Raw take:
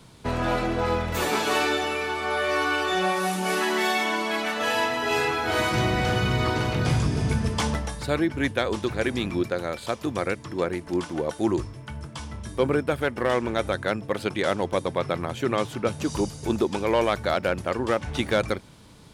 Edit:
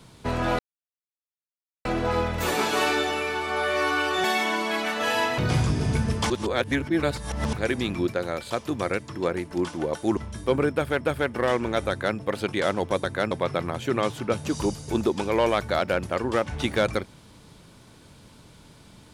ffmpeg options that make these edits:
-filter_complex "[0:a]asplit=10[s0][s1][s2][s3][s4][s5][s6][s7][s8][s9];[s0]atrim=end=0.59,asetpts=PTS-STARTPTS,afade=t=out:st=0.586:d=0.004:c=hsin,apad=pad_dur=1.26[s10];[s1]atrim=start=0.59:end=2.982,asetpts=PTS-STARTPTS,afade=t=in:d=0.004:c=hsin[s11];[s2]atrim=start=3.838:end=4.982[s12];[s3]atrim=start=6.738:end=7.662[s13];[s4]atrim=start=7.658:end=8.892,asetpts=PTS-STARTPTS,areverse[s14];[s5]atrim=start=8.888:end=11.532[s15];[s6]atrim=start=12.278:end=13.122[s16];[s7]atrim=start=12.828:end=14.862[s17];[s8]atrim=start=13.718:end=13.992[s18];[s9]atrim=start=14.858[s19];[s10][s11]concat=n=2:v=0:a=1[s20];[s20][s12]acrossfade=d=0.004:c1=hsin:c2=hsin[s21];[s21][s13]acrossfade=d=0.004:c1=hsin:c2=hsin[s22];[s22][s14]acrossfade=d=0.004:c1=hsin:c2=hsin[s23];[s23][s15]acrossfade=d=0.004:c1=hsin:c2=hsin[s24];[s24][s16]acrossfade=d=0.004:c1=hsin:c2=hsin[s25];[s25][s17]acrossfade=d=0.004:c1=hsin:c2=hsin[s26];[s26][s18]acrossfade=d=0.004:c1=hsin:c2=hsin[s27];[s27][s19]acrossfade=d=0.004:c1=hsin:c2=hsin"

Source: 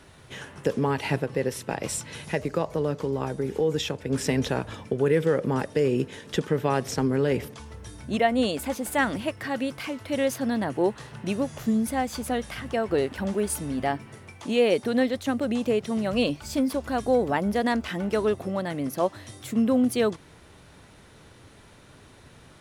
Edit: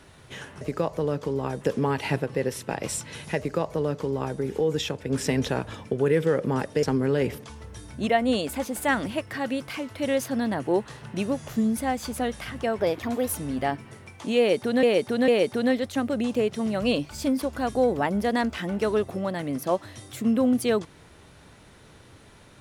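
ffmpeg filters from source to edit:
-filter_complex "[0:a]asplit=8[s0][s1][s2][s3][s4][s5][s6][s7];[s0]atrim=end=0.612[s8];[s1]atrim=start=2.378:end=3.382[s9];[s2]atrim=start=0.608:end=5.832[s10];[s3]atrim=start=6.928:end=12.904[s11];[s4]atrim=start=12.9:end=13.54,asetpts=PTS-STARTPTS,asetrate=53361,aresample=44100[s12];[s5]atrim=start=13.536:end=15.042[s13];[s6]atrim=start=14.588:end=15.042[s14];[s7]atrim=start=14.588[s15];[s8][s9]acrossfade=d=0.004:c1=hsin:c2=hsin[s16];[s16][s10]acrossfade=d=0.004:c1=hsin:c2=hsin[s17];[s17][s11]acrossfade=d=0.004:c1=hsin:c2=hsin[s18];[s18][s12]acrossfade=d=0.004:c1=hsin:c2=hsin[s19];[s19][s13]acrossfade=d=0.004:c1=hsin:c2=hsin[s20];[s20][s14]acrossfade=d=0.004:c1=hsin:c2=hsin[s21];[s21][s15]acrossfade=d=0.004:c1=hsin:c2=hsin"

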